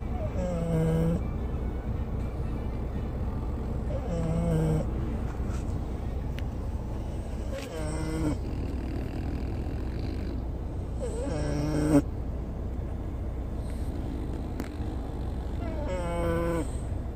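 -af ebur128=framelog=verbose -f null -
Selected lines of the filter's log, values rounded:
Integrated loudness:
  I:         -32.0 LUFS
  Threshold: -42.0 LUFS
Loudness range:
  LRA:         3.4 LU
  Threshold: -52.3 LUFS
  LRA low:   -34.2 LUFS
  LRA high:  -30.8 LUFS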